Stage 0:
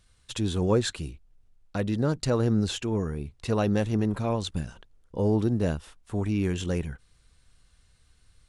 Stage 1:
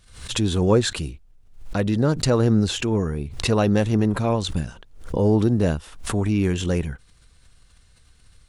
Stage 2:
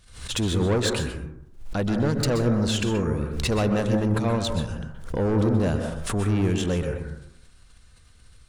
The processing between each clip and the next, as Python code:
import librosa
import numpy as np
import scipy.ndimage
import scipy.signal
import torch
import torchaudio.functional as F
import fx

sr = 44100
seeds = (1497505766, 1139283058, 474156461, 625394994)

y1 = fx.pre_swell(x, sr, db_per_s=92.0)
y1 = y1 * librosa.db_to_amplitude(5.5)
y2 = 10.0 ** (-19.0 / 20.0) * np.tanh(y1 / 10.0 ** (-19.0 / 20.0))
y2 = fx.rev_plate(y2, sr, seeds[0], rt60_s=0.78, hf_ratio=0.25, predelay_ms=115, drr_db=4.5)